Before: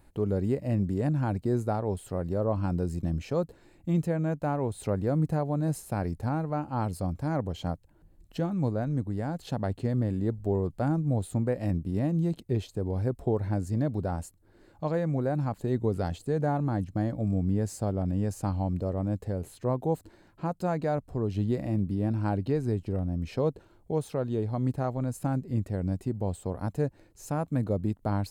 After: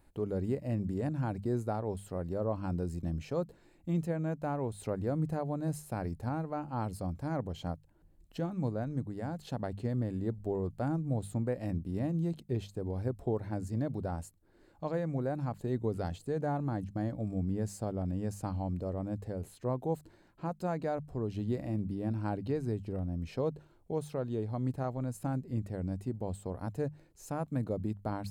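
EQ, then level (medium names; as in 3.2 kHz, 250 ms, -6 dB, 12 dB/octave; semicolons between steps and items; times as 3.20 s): hum notches 50/100/150/200 Hz; -5.0 dB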